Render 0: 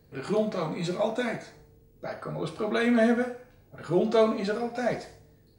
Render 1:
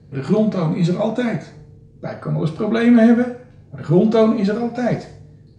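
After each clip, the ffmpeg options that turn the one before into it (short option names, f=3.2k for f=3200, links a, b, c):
-af "lowpass=f=8.3k:w=0.5412,lowpass=f=8.3k:w=1.3066,equalizer=f=140:t=o:w=2.1:g=13,volume=4dB"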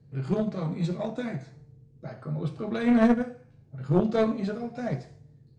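-af "aeval=exprs='0.794*(cos(1*acos(clip(val(0)/0.794,-1,1)))-cos(1*PI/2))+0.158*(cos(3*acos(clip(val(0)/0.794,-1,1)))-cos(3*PI/2))':c=same,equalizer=f=130:t=o:w=0.22:g=12,volume=-5.5dB"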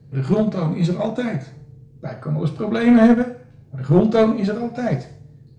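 -af "acontrast=90,volume=2dB"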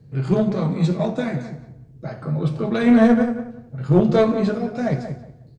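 -filter_complex "[0:a]asplit=2[a][b];[b]adelay=183,lowpass=f=1.7k:p=1,volume=-9dB,asplit=2[c][d];[d]adelay=183,lowpass=f=1.7k:p=1,volume=0.25,asplit=2[e][f];[f]adelay=183,lowpass=f=1.7k:p=1,volume=0.25[g];[a][c][e][g]amix=inputs=4:normalize=0,volume=-1dB"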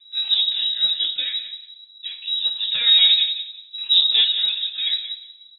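-af "lowpass=f=3.4k:t=q:w=0.5098,lowpass=f=3.4k:t=q:w=0.6013,lowpass=f=3.4k:t=q:w=0.9,lowpass=f=3.4k:t=q:w=2.563,afreqshift=-4000,volume=-1.5dB"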